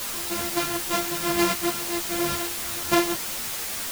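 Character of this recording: a buzz of ramps at a fixed pitch in blocks of 128 samples; tremolo saw up 0.59 Hz, depth 70%; a quantiser's noise floor 6-bit, dither triangular; a shimmering, thickened sound

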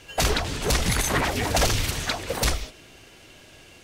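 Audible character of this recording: noise floor -50 dBFS; spectral tilt -4.0 dB/octave

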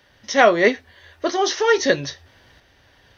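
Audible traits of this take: tremolo saw up 0.77 Hz, depth 45%

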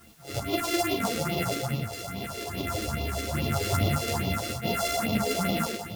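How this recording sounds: a buzz of ramps at a fixed pitch in blocks of 64 samples; phasing stages 4, 2.4 Hz, lowest notch 140–1600 Hz; a quantiser's noise floor 10-bit, dither triangular; a shimmering, thickened sound

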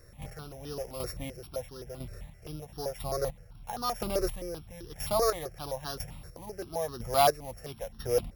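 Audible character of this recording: a buzz of ramps at a fixed pitch in blocks of 8 samples; chopped level 1 Hz, depth 60%, duty 30%; notches that jump at a steady rate 7.7 Hz 860–2200 Hz

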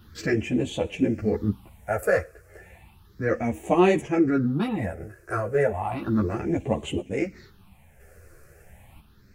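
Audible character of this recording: phasing stages 6, 0.33 Hz, lowest notch 230–1400 Hz; random-step tremolo 1 Hz; a shimmering, thickened sound

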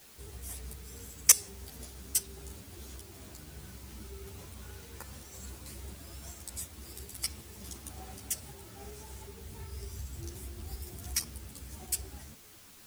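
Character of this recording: tremolo saw up 2.7 Hz, depth 35%; a quantiser's noise floor 10-bit, dither triangular; a shimmering, thickened sound

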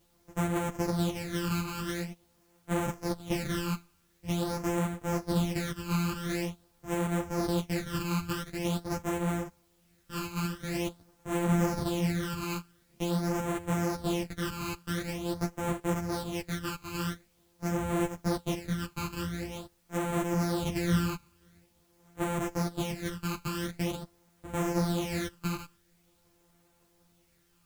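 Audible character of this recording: a buzz of ramps at a fixed pitch in blocks of 256 samples; phasing stages 12, 0.46 Hz, lowest notch 590–4800 Hz; a quantiser's noise floor 12-bit, dither triangular; a shimmering, thickened sound

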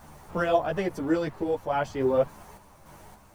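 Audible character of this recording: a quantiser's noise floor 10-bit, dither none; random-step tremolo; a shimmering, thickened sound

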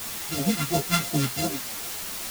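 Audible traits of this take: a buzz of ramps at a fixed pitch in blocks of 64 samples; phasing stages 2, 2.9 Hz, lowest notch 470–1800 Hz; a quantiser's noise floor 6-bit, dither triangular; a shimmering, thickened sound

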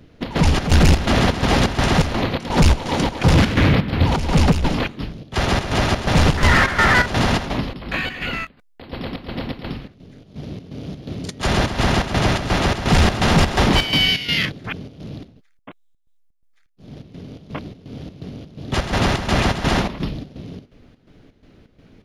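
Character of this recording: chopped level 2.8 Hz, depth 65%, duty 65%

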